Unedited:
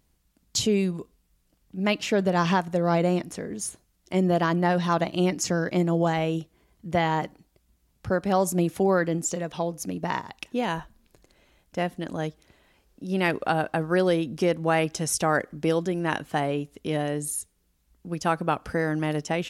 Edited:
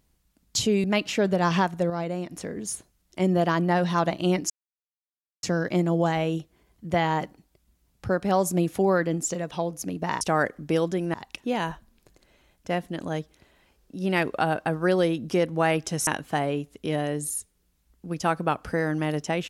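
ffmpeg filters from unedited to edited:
-filter_complex "[0:a]asplit=8[a][b][c][d][e][f][g][h];[a]atrim=end=0.842[i];[b]atrim=start=1.778:end=2.842[j];[c]atrim=start=2.838:end=3.252,asetpts=PTS-STARTPTS,volume=-7.5dB[k];[d]atrim=start=3.248:end=5.44,asetpts=PTS-STARTPTS,afade=t=out:st=2.188:d=0.004:c=hsin,apad=pad_dur=0.93[l];[e]atrim=start=5.44:end=10.222,asetpts=PTS-STARTPTS,afade=t=in:d=0.004:c=hsin[m];[f]atrim=start=15.148:end=16.082[n];[g]atrim=start=10.218:end=15.152[o];[h]atrim=start=16.078[p];[i][j]acrossfade=d=0.004:c1=hsin:c2=hsin[q];[q][k]acrossfade=d=0.004:c1=hsin:c2=hsin[r];[l][m]concat=n=2:v=0:a=1[s];[r][s]acrossfade=d=0.004:c1=hsin:c2=hsin[t];[t][n]acrossfade=d=0.004:c1=hsin:c2=hsin[u];[u][o]acrossfade=d=0.004:c1=hsin:c2=hsin[v];[v][p]acrossfade=d=0.004:c1=hsin:c2=hsin"

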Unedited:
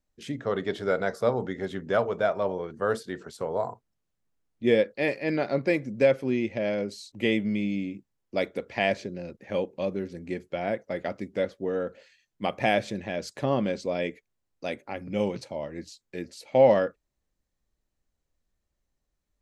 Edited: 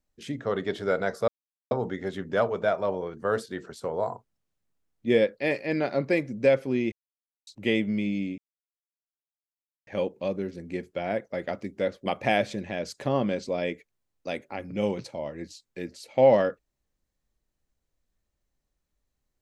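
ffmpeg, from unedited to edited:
-filter_complex "[0:a]asplit=7[a][b][c][d][e][f][g];[a]atrim=end=1.28,asetpts=PTS-STARTPTS,afade=t=out:st=1.276:d=0.004:c=hsin,apad=pad_dur=0.43[h];[b]atrim=start=1.28:end=6.49,asetpts=PTS-STARTPTS,afade=t=in:d=0.004:c=hsin,afade=t=out:st=5.206:d=0.004:c=hsin[i];[c]atrim=start=6.49:end=7.04,asetpts=PTS-STARTPTS,volume=0[j];[d]atrim=start=7.04:end=7.95,asetpts=PTS-STARTPTS,afade=t=in:d=0.004:c=hsin,afade=t=out:st=0.906:d=0.004:c=hsin[k];[e]atrim=start=7.95:end=9.44,asetpts=PTS-STARTPTS,volume=0[l];[f]atrim=start=9.44:end=11.632,asetpts=PTS-STARTPTS,afade=t=in:d=0.004:c=hsin[m];[g]atrim=start=12.428[n];[h][i][j][k][l][m]concat=n=6:v=0:a=1[o];[o][n]acrossfade=d=0.004:c1=hsin:c2=hsin"

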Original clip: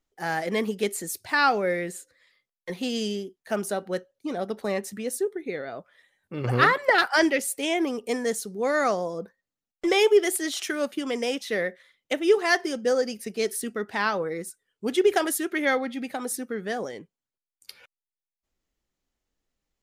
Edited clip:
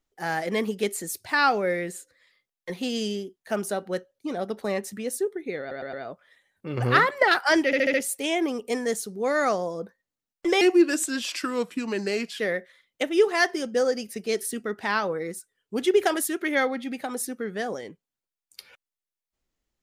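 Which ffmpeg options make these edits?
-filter_complex "[0:a]asplit=10[a][b][c][d][e][f][g][h][i][j];[a]atrim=end=5.712[k];[b]atrim=start=5.598:end=5.712[l];[c]atrim=start=5.598:end=5.712[m];[d]atrim=start=5.598:end=7.402[n];[e]atrim=start=7.328:end=7.402[o];[f]atrim=start=7.328:end=7.402[p];[g]atrim=start=7.328:end=7.402[q];[h]atrim=start=7.328:end=10.004[r];[i]atrim=start=10:end=11.5,asetpts=PTS-STARTPTS,asetrate=37044,aresample=44100[s];[j]atrim=start=11.496[t];[k][l]acrossfade=d=0.004:c1=hsin:c2=hsin[u];[u][m]acrossfade=d=0.004:c1=hsin:c2=hsin[v];[v][n]acrossfade=d=0.004:c1=hsin:c2=hsin[w];[w][o]acrossfade=d=0.004:c1=hsin:c2=hsin[x];[x][p]acrossfade=d=0.004:c1=hsin:c2=hsin[y];[y][q]acrossfade=d=0.004:c1=hsin:c2=hsin[z];[z][r]acrossfade=d=0.004:c1=hsin:c2=hsin[aa];[aa][s]acrossfade=d=0.004:c1=hsin:c2=hsin[ab];[ab][t]acrossfade=d=0.004:c1=hsin:c2=hsin"

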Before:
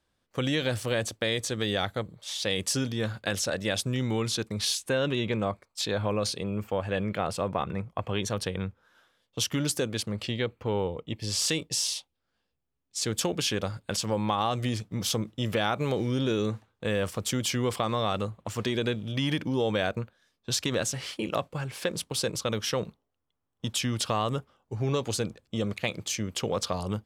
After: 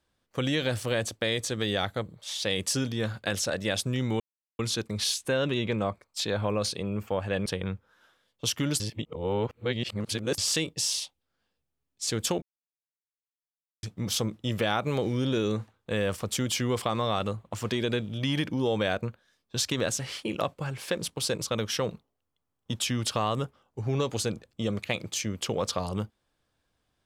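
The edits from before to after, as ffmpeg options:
-filter_complex "[0:a]asplit=7[a][b][c][d][e][f][g];[a]atrim=end=4.2,asetpts=PTS-STARTPTS,afade=t=out:st=4.196:d=0.004:c=hsin,apad=pad_dur=0.39[h];[b]atrim=start=4.2:end=7.072,asetpts=PTS-STARTPTS,afade=t=in:d=0.004:c=hsin[i];[c]atrim=start=8.398:end=9.742[j];[d]atrim=start=9.738:end=11.322,asetpts=PTS-STARTPTS,areverse[k];[e]atrim=start=11.318:end=13.36,asetpts=PTS-STARTPTS,afade=t=out:st=2.038:d=0.004:c=hsin[l];[f]atrim=start=13.36:end=14.77,asetpts=PTS-STARTPTS,volume=0[m];[g]atrim=start=14.77,asetpts=PTS-STARTPTS,afade=t=in:d=0.004:c=hsin[n];[h][i]concat=n=2:v=0:a=1[o];[o][j]acrossfade=d=0.004:c1=hsin:c2=hsin[p];[p][k]acrossfade=d=0.004:c1=hsin:c2=hsin[q];[l][m][n]concat=n=3:v=0:a=1[r];[q][r]acrossfade=d=0.004:c1=hsin:c2=hsin"

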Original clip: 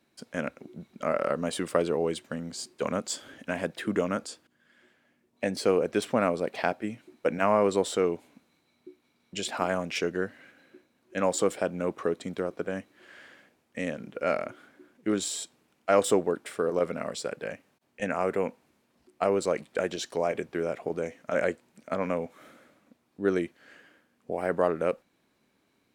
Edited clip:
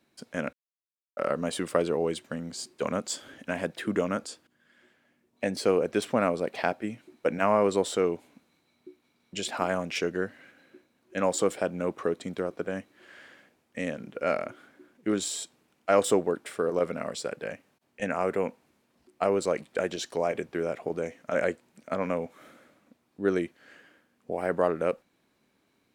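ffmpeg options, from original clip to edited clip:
-filter_complex "[0:a]asplit=3[a][b][c];[a]atrim=end=0.53,asetpts=PTS-STARTPTS,afade=t=out:st=0.526:d=0.004:c=hsin[d];[b]atrim=start=0.53:end=1.17,asetpts=PTS-STARTPTS,volume=0[e];[c]atrim=start=1.17,asetpts=PTS-STARTPTS,afade=t=in:d=0.004:c=hsin[f];[d][e][f]concat=n=3:v=0:a=1"

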